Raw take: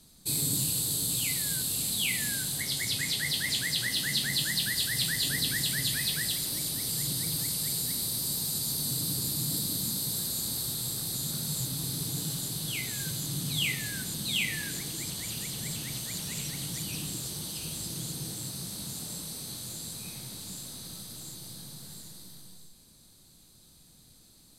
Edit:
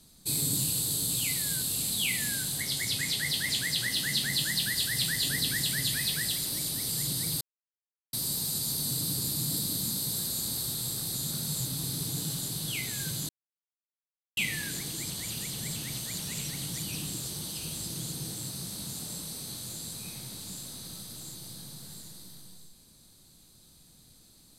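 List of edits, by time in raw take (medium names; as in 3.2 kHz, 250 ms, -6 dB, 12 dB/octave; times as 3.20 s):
7.41–8.13 s: mute
13.29–14.37 s: mute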